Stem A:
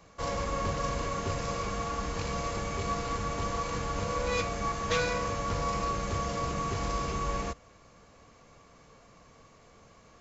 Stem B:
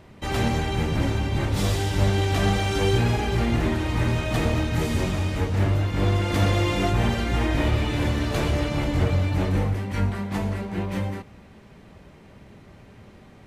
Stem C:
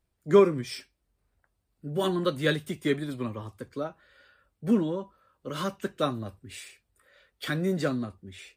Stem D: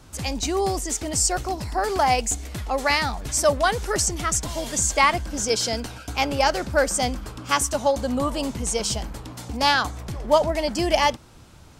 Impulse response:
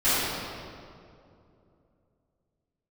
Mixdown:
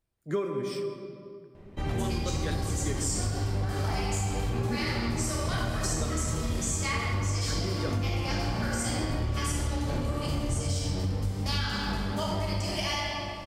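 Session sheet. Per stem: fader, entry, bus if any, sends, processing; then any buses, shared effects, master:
-8.5 dB, 2.10 s, send -13 dB, compressor, threshold -36 dBFS, peak gain reduction 12 dB
-8.0 dB, 1.55 s, send -22.5 dB, tilt -2 dB/oct; notches 60/120 Hz
-5.0 dB, 0.00 s, send -23 dB, dry
-3.0 dB, 1.85 s, send -8.5 dB, passive tone stack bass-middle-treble 5-5-5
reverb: on, RT60 2.6 s, pre-delay 3 ms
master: compressor, threshold -26 dBFS, peak gain reduction 10 dB

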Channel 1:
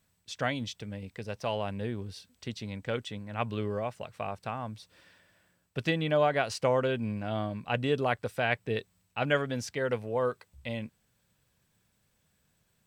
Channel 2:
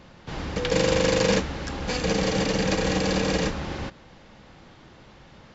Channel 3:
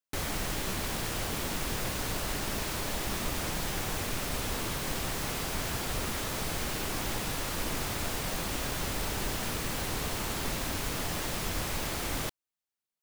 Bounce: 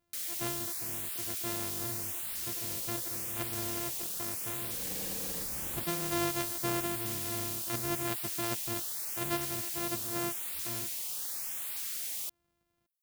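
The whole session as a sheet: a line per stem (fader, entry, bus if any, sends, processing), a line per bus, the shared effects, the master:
-7.5 dB, 0.00 s, no send, sample sorter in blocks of 128 samples
4.53 s -23 dB -> 4.92 s -10.5 dB, 1.95 s, no send, compressor, threshold -31 dBFS, peak gain reduction 13 dB
+0.5 dB, 0.00 s, no send, differentiator; hard clip -33 dBFS, distortion -15 dB; LFO notch saw up 0.85 Hz 620–6900 Hz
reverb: off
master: dry

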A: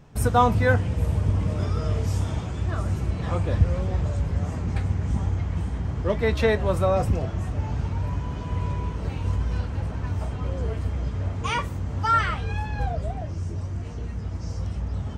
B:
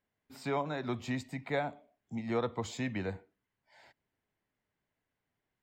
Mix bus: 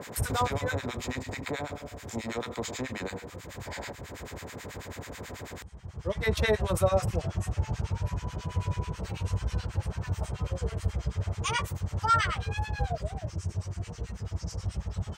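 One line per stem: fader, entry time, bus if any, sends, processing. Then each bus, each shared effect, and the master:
+1.0 dB, 0.00 s, no send, bell 260 Hz -15 dB 0.27 oct; auto duck -17 dB, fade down 1.30 s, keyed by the second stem
-0.5 dB, 0.00 s, no send, per-bin compression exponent 0.4; three-band squash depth 70%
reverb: off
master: HPF 56 Hz; high shelf 4400 Hz +11.5 dB; harmonic tremolo 9.2 Hz, depth 100%, crossover 1100 Hz

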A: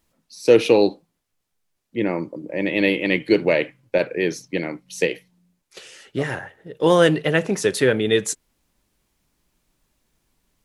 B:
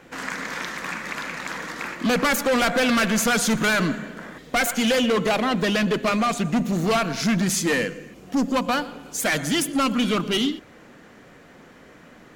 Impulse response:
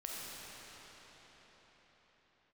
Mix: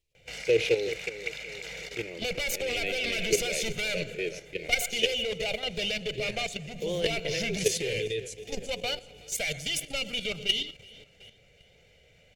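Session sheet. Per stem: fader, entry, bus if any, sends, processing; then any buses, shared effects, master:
-4.0 dB, 0.00 s, no send, echo send -13.5 dB, dry
+0.5 dB, 0.15 s, no send, echo send -22 dB, comb 1.4 ms, depth 68%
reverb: off
echo: feedback echo 0.37 s, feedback 50%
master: EQ curve 110 Hz 0 dB, 260 Hz -21 dB, 420 Hz 0 dB, 980 Hz -21 dB, 1400 Hz -22 dB, 2400 Hz +2 dB, 3600 Hz -1 dB, 6600 Hz -4 dB, 11000 Hz -8 dB; level quantiser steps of 10 dB

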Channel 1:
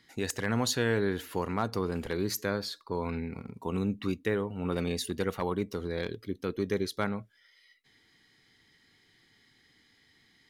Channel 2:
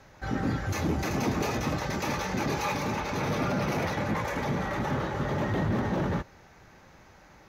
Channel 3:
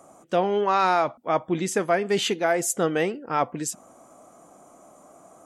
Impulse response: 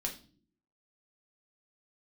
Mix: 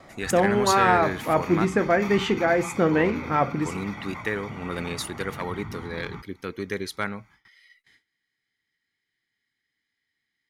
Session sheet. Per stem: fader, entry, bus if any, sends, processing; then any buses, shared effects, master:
-1.5 dB, 0.00 s, muted 1.65–2.91, no send, bell 9100 Hz +6 dB 1.3 oct
-8.5 dB, 0.00 s, no send, comb 0.9 ms, depth 91%; auto duck -6 dB, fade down 0.70 s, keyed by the first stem
-6.0 dB, 0.00 s, send -6 dB, tilt -3.5 dB/oct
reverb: on, pre-delay 4 ms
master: gate with hold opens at -52 dBFS; bell 1900 Hz +9 dB 1.3 oct

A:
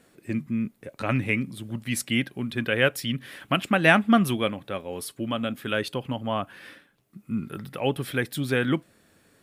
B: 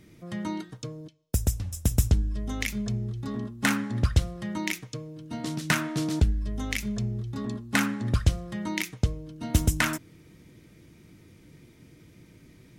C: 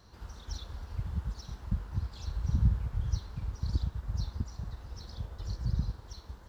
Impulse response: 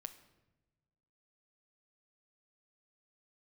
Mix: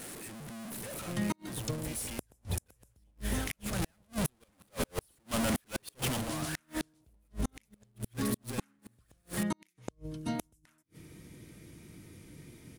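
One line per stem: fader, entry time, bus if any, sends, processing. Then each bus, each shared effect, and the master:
3.63 s -19.5 dB -> 3.89 s -7 dB -> 6.04 s -7 dB -> 6.34 s -17.5 dB, 0.00 s, no send, infinite clipping
-3.0 dB, 0.85 s, no send, limiter -17.5 dBFS, peak gain reduction 9 dB; auto duck -12 dB, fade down 0.70 s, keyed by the first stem
-3.0 dB, 1.35 s, no send, spectral whitening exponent 0.3; steep low-pass 820 Hz 36 dB/oct; AM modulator 100 Hz, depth 60%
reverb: off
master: bell 10000 Hz +9 dB 0.67 oct; AGC gain up to 4 dB; flipped gate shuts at -20 dBFS, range -41 dB

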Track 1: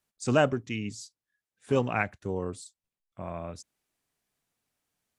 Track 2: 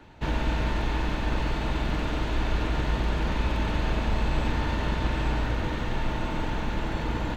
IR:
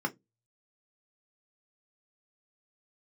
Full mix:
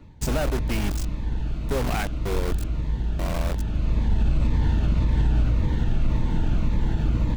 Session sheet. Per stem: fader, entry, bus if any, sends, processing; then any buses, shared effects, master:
-1.0 dB, 0.00 s, no send, AM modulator 46 Hz, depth 25%; compressor 5:1, threshold -28 dBFS, peak gain reduction 8.5 dB; companded quantiser 2-bit
-4.5 dB, 0.00 s, no send, tone controls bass +14 dB, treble +3 dB; cascading phaser falling 1.8 Hz; auto duck -8 dB, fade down 0.30 s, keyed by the first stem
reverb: off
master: bell 550 Hz +2.5 dB 2.7 oct; limiter -13 dBFS, peak gain reduction 6.5 dB

